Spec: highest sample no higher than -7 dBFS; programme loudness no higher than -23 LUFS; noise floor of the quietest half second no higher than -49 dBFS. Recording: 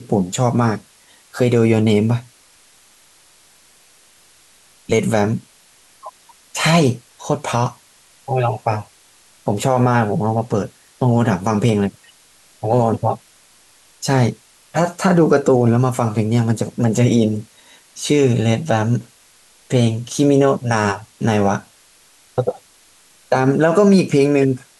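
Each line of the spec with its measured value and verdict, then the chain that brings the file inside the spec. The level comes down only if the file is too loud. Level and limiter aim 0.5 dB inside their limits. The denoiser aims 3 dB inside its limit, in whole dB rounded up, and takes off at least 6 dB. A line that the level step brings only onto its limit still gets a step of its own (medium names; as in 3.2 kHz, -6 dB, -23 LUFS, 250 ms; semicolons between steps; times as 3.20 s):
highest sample -4.0 dBFS: fail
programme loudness -17.5 LUFS: fail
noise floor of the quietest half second -51 dBFS: pass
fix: trim -6 dB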